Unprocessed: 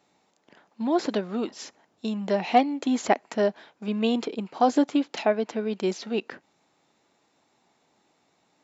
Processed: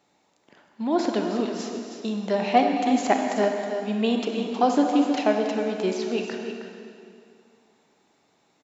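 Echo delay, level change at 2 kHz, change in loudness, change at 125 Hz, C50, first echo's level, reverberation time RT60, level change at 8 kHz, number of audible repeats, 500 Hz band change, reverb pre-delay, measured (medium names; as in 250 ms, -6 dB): 316 ms, +2.5 dB, +2.0 dB, no reading, 2.0 dB, -9.0 dB, 2.4 s, no reading, 1, +2.0 dB, 32 ms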